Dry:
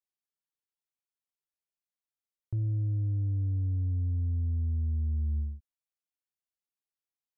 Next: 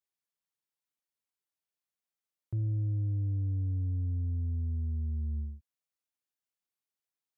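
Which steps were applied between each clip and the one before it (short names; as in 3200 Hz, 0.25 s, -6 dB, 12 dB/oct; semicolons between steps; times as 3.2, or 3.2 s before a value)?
HPF 82 Hz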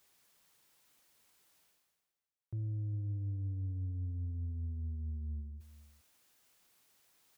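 reverse; upward compressor, threshold -40 dBFS; reverse; outdoor echo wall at 69 m, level -17 dB; gain -6.5 dB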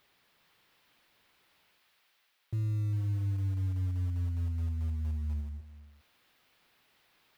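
switching spikes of -49 dBFS; air absorption 390 m; in parallel at -7 dB: short-mantissa float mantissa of 2-bit; on the sum: gain +3 dB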